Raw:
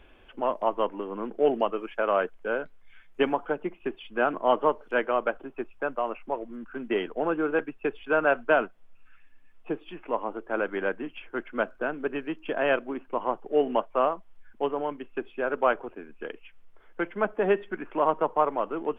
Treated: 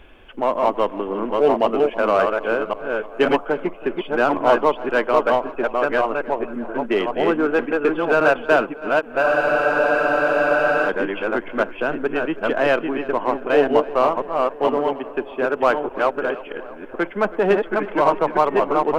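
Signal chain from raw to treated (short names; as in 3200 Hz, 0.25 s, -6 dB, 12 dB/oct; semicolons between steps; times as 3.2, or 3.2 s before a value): reverse delay 0.547 s, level -3 dB; in parallel at -4 dB: hard clip -23.5 dBFS, distortion -7 dB; on the sum: tape echo 0.324 s, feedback 75%, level -17 dB, low-pass 3000 Hz; spectral freeze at 9.23, 1.66 s; ending taper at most 570 dB/s; gain +3.5 dB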